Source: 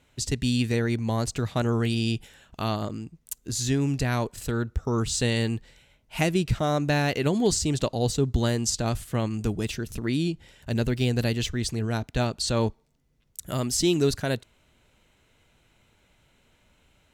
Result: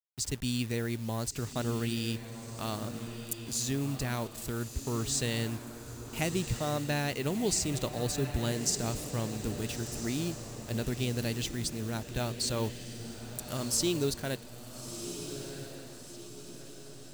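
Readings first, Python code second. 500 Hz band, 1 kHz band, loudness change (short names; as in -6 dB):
-7.5 dB, -7.5 dB, -7.0 dB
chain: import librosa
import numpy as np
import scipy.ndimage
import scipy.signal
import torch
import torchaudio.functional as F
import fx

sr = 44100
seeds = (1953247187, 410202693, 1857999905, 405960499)

y = fx.delta_hold(x, sr, step_db=-38.5)
y = fx.high_shelf(y, sr, hz=5500.0, db=8.5)
y = fx.echo_diffused(y, sr, ms=1355, feedback_pct=48, wet_db=-9.0)
y = y * librosa.db_to_amplitude(-8.0)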